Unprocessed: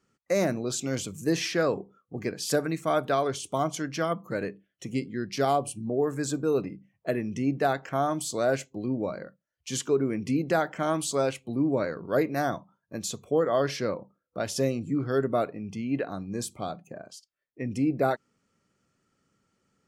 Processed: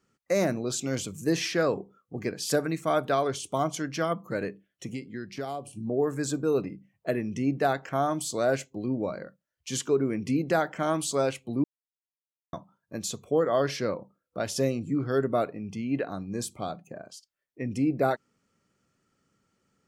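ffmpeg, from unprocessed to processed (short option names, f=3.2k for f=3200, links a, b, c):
-filter_complex "[0:a]asettb=1/sr,asplit=3[a][b][c];[a]atrim=end=4.894[d];[b]atrim=start=4.89:end=5.73,asetpts=PTS-STARTPTS,afade=t=in:d=0.004:c=qsin,afade=t=out:st=0.836:d=0.004:c=qsin,acrossover=split=920|2000[e][f][g];[e]acompressor=threshold=-34dB:ratio=4[h];[f]acompressor=threshold=-48dB:ratio=4[i];[g]acompressor=threshold=-49dB:ratio=4[j];[h][i][j]amix=inputs=3:normalize=0[k];[c]atrim=start=5.726[l];[d][k]acrossfade=d=0.004:c1=hsin:c2=qsin[m];[m][l]acrossfade=d=0.004:c1=qsin:c2=hsin,asplit=3[n][o][p];[n]atrim=end=11.64,asetpts=PTS-STARTPTS,afade=t=out:st=11.636:d=0.004:c=hsin[q];[o]atrim=start=11.64:end=12.53,asetpts=PTS-STARTPTS,volume=0[r];[p]atrim=start=12.53,asetpts=PTS-STARTPTS,afade=t=in:d=0.004:c=hsin[s];[q][r][s]concat=n=3:v=0:a=1"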